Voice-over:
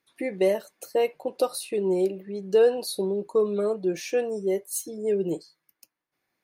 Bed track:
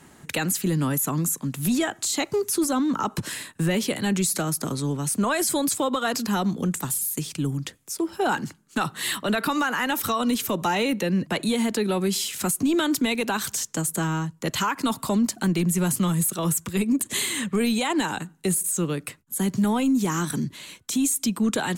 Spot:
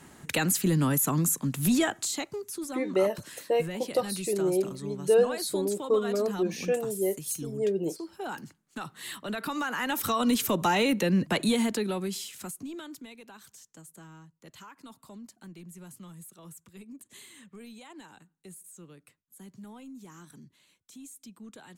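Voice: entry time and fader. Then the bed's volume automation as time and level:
2.55 s, −2.5 dB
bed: 0:01.91 −1 dB
0:02.40 −13 dB
0:09.02 −13 dB
0:10.32 −1 dB
0:11.50 −1 dB
0:13.18 −24 dB

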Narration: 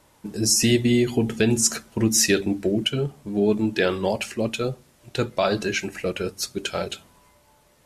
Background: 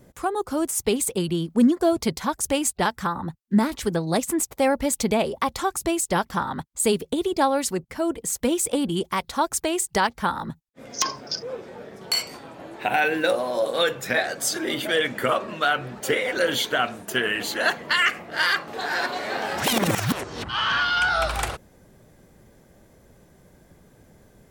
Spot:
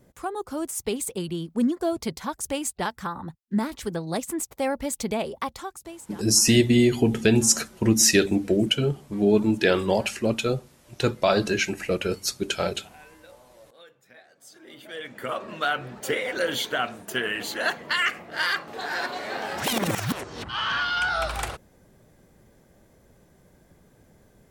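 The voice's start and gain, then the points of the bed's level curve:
5.85 s, +1.0 dB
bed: 0:05.43 −5.5 dB
0:06.43 −29 dB
0:14.27 −29 dB
0:15.54 −3.5 dB

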